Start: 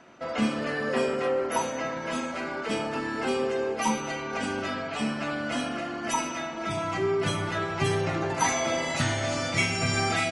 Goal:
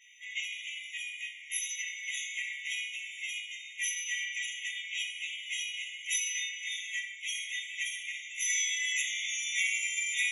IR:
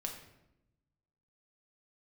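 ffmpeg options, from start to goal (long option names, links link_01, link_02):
-filter_complex "[0:a]acompressor=threshold=-28dB:ratio=6,asplit=2[link_01][link_02];[1:a]atrim=start_sample=2205,highshelf=frequency=6900:gain=10.5,adelay=14[link_03];[link_02][link_03]afir=irnorm=-1:irlink=0,volume=3dB[link_04];[link_01][link_04]amix=inputs=2:normalize=0,afftfilt=real='re*eq(mod(floor(b*sr/1024/1900),2),1)':imag='im*eq(mod(floor(b*sr/1024/1900),2),1)':win_size=1024:overlap=0.75"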